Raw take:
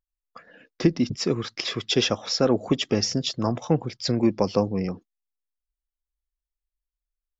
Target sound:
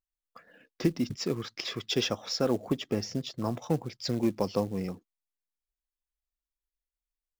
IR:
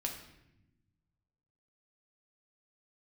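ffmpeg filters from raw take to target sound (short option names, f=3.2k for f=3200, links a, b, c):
-filter_complex "[0:a]asettb=1/sr,asplit=3[a][b][c];[a]atrim=end=2.604[d];[b]atrim=start=2.6:end=3.46,asetpts=PTS-STARTPTS,afade=t=in:d=0.004:c=qsin,afade=t=out:st=0.856:d=0.004:c=qsin,highshelf=f=2.7k:g=-8.5[e];[c]atrim=start=3.456[f];[d][e]acrossfade=d=0.004:c1=hsin:c2=qsin[g];[g][f]acrossfade=d=0.004:c1=qsin:c2=hsin,acrusher=bits=6:mode=log:mix=0:aa=0.000001,volume=-6.5dB"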